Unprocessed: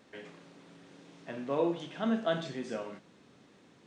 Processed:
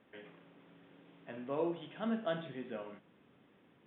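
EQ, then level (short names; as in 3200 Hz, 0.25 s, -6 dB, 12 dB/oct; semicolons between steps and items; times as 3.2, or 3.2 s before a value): steep low-pass 3500 Hz 96 dB/oct; -5.5 dB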